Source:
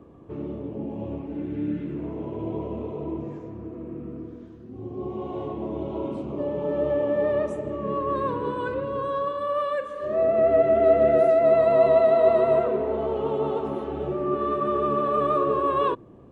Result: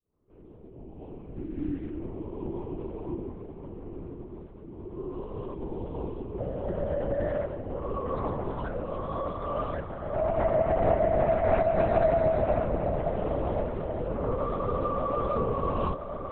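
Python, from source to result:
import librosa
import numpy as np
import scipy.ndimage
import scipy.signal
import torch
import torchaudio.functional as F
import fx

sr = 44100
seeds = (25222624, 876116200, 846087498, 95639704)

p1 = fx.fade_in_head(x, sr, length_s=1.67)
p2 = fx.dynamic_eq(p1, sr, hz=320.0, q=2.4, threshold_db=-36.0, ratio=4.0, max_db=4)
p3 = p2 + fx.echo_diffused(p2, sr, ms=1148, feedback_pct=61, wet_db=-9, dry=0)
p4 = fx.lpc_vocoder(p3, sr, seeds[0], excitation='whisper', order=8)
y = p4 * 10.0 ** (-6.5 / 20.0)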